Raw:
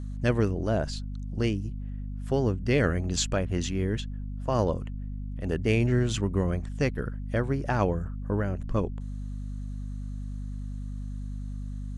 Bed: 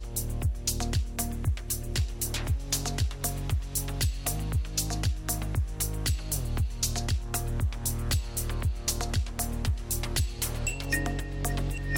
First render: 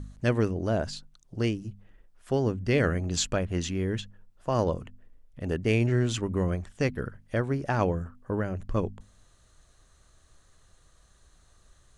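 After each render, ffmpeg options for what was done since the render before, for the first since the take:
-af "bandreject=f=50:t=h:w=4,bandreject=f=100:t=h:w=4,bandreject=f=150:t=h:w=4,bandreject=f=200:t=h:w=4,bandreject=f=250:t=h:w=4"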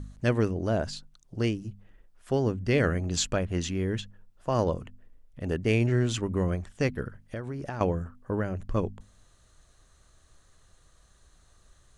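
-filter_complex "[0:a]asettb=1/sr,asplit=3[a][b][c];[a]atrim=end=7.024[d];[b]atrim=start=7.02:end=7.81,asetpts=PTS-STARTPTS,afade=t=in:d=0.004:c=qsin,afade=t=out:st=0.786:d=0.004:c=qsin,acompressor=threshold=-30dB:ratio=12:attack=3.2:release=140:knee=1:detection=peak[e];[c]atrim=start=7.806[f];[d][e]acrossfade=d=0.004:c1=hsin:c2=qsin[g];[g][f]acrossfade=d=0.004:c1=qsin:c2=hsin"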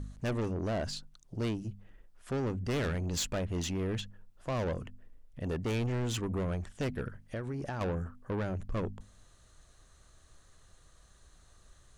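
-af "asoftclip=type=tanh:threshold=-29dB"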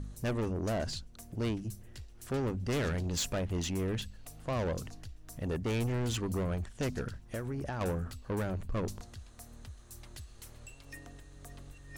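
-filter_complex "[1:a]volume=-20dB[a];[0:a][a]amix=inputs=2:normalize=0"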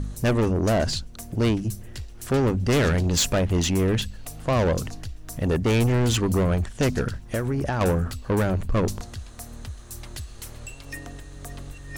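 -af "volume=11.5dB"

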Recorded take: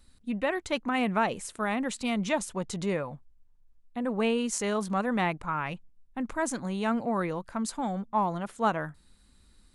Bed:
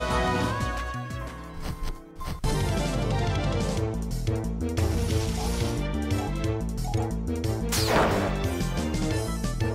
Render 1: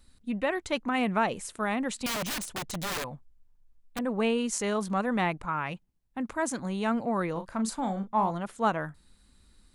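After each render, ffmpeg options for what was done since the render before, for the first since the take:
-filter_complex "[0:a]asettb=1/sr,asplit=3[a][b][c];[a]atrim=end=2.064[d];[b]atrim=start=2.06:end=3.99,asetpts=PTS-STARTPTS,afade=t=in:d=0.004:c=qsin,afade=t=out:st=1.926:d=0.004:c=qsin,aeval=exprs='(mod(23.7*val(0)+1,2)-1)/23.7':c=same[e];[c]atrim=start=3.986[f];[d][e]acrossfade=d=0.004:c1=hsin:c2=qsin[g];[g][f]acrossfade=d=0.004:c1=qsin:c2=hsin,asettb=1/sr,asplit=3[h][i][j];[h]atrim=end=5.454[k];[i]atrim=start=5.45:end=6.59,asetpts=PTS-STARTPTS,afade=t=in:d=0.004:c=qsin,afade=t=out:st=1.136:d=0.004:c=qsin,highpass=f=66:p=1[l];[j]atrim=start=6.586[m];[k][l]acrossfade=d=0.004:c1=hsin:c2=qsin[n];[n][m]acrossfade=d=0.004:c1=qsin:c2=hsin,asettb=1/sr,asplit=3[o][p][q];[o]atrim=end=7.324[r];[p]atrim=start=7.32:end=8.31,asetpts=PTS-STARTPTS,afade=t=in:d=0.004:c=qsin,afade=t=out:st=0.986:d=0.004:c=qsin,asplit=2[s][t];[t]adelay=36,volume=-8dB[u];[s][u]amix=inputs=2:normalize=0,atrim=end_sample=43659[v];[q]atrim=start=8.306[w];[r][v]acrossfade=d=0.004:c1=hsin:c2=qsin[x];[x][w]acrossfade=d=0.004:c1=qsin:c2=hsin"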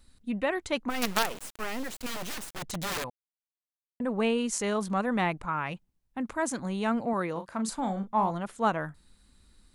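-filter_complex "[0:a]asplit=3[a][b][c];[a]afade=t=out:st=0.89:d=0.02[d];[b]acrusher=bits=4:dc=4:mix=0:aa=0.000001,afade=t=in:st=0.89:d=0.02,afade=t=out:st=2.6:d=0.02[e];[c]afade=t=in:st=2.6:d=0.02[f];[d][e][f]amix=inputs=3:normalize=0,asettb=1/sr,asplit=3[g][h][i];[g]atrim=end=7.134[j];[h]atrim=start=7.13:end=7.69,asetpts=PTS-STARTPTS,afade=t=in:d=0.004:c=qsin,afade=t=out:st=0.556:d=0.004:c=qsin,highpass=f=170:p=1[k];[i]atrim=start=7.686[l];[j][k]acrossfade=d=0.004:c1=hsin:c2=qsin[m];[m][l]acrossfade=d=0.004:c1=qsin:c2=hsin,asplit=3[n][o][p];[n]atrim=end=3.1,asetpts=PTS-STARTPTS,afade=t=out:st=3.096:d=0.004:c=hsin[q];[o]atrim=start=3.1:end=4,asetpts=PTS-STARTPTS,volume=0[r];[p]atrim=start=4,asetpts=PTS-STARTPTS,afade=t=in:d=0.004:c=hsin[s];[q][r][s]concat=n=3:v=0:a=1"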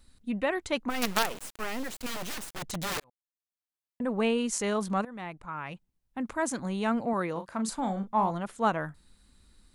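-filter_complex "[0:a]asplit=3[a][b][c];[a]atrim=end=3,asetpts=PTS-STARTPTS,afade=t=out:st=2.996:d=0.004:c=hsin[d];[b]atrim=start=3:end=5.05,asetpts=PTS-STARTPTS,afade=t=in:d=1.04,afade=t=out:st=2.046:d=0.004:c=hsin:silence=0.125893[e];[c]atrim=start=5.05,asetpts=PTS-STARTPTS,afade=t=in:d=1.25:silence=0.125893[f];[d][e][f]concat=n=3:v=0:a=1"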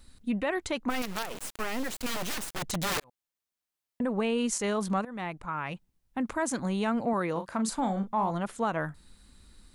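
-filter_complex "[0:a]asplit=2[a][b];[b]acompressor=threshold=-36dB:ratio=6,volume=-3dB[c];[a][c]amix=inputs=2:normalize=0,alimiter=limit=-19.5dB:level=0:latency=1:release=100"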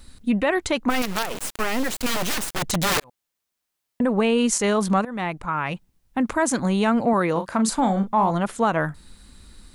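-af "volume=8.5dB"

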